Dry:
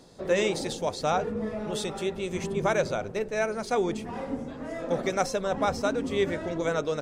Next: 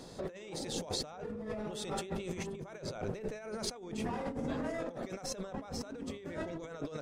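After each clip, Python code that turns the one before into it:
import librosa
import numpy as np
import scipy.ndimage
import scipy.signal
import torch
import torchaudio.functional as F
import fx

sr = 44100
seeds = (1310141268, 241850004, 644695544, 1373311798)

y = fx.over_compress(x, sr, threshold_db=-38.0, ratio=-1.0)
y = y * librosa.db_to_amplitude(-3.5)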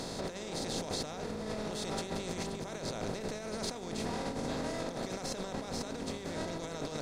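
y = fx.bin_compress(x, sr, power=0.4)
y = y * librosa.db_to_amplitude(-4.5)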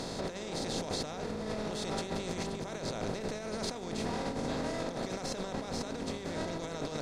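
y = fx.high_shelf(x, sr, hz=10000.0, db=-8.0)
y = y * librosa.db_to_amplitude(1.5)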